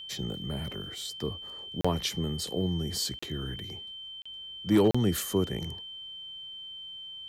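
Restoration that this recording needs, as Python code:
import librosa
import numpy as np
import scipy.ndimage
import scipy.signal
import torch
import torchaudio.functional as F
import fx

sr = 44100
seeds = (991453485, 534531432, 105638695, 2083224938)

y = fx.fix_declip(x, sr, threshold_db=-15.0)
y = fx.notch(y, sr, hz=3100.0, q=30.0)
y = fx.fix_interpolate(y, sr, at_s=(1.81, 3.19, 4.22, 4.91), length_ms=35.0)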